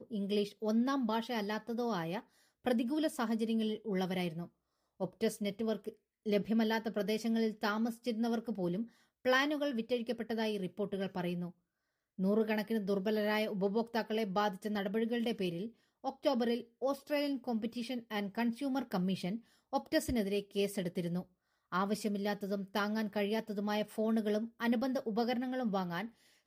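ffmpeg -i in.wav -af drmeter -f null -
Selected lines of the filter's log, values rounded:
Channel 1: DR: 12.2
Overall DR: 12.2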